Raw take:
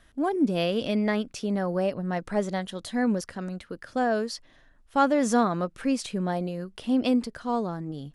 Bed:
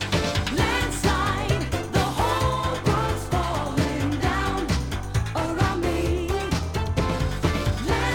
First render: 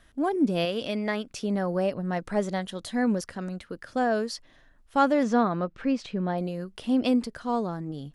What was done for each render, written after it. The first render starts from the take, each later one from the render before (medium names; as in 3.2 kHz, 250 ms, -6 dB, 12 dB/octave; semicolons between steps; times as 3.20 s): 0.65–1.31 s: bass shelf 360 Hz -7 dB; 5.23–6.38 s: distance through air 160 m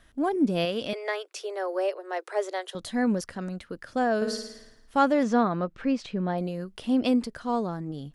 0.93–2.75 s: steep high-pass 350 Hz 96 dB/octave; 4.16–4.98 s: flutter echo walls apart 9.6 m, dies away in 0.8 s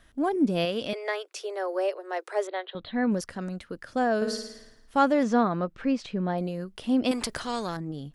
2.47–3.12 s: elliptic low-pass 3.9 kHz; 7.11–7.77 s: spectrum-flattening compressor 2:1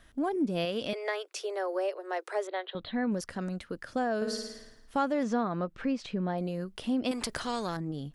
compression 2:1, threshold -30 dBFS, peak gain reduction 8 dB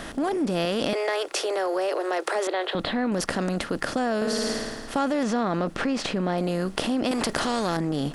spectral levelling over time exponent 0.6; in parallel at -1 dB: compressor with a negative ratio -34 dBFS, ratio -1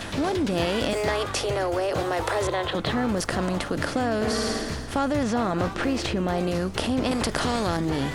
add bed -9.5 dB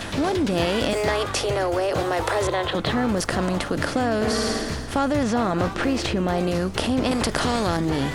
trim +2.5 dB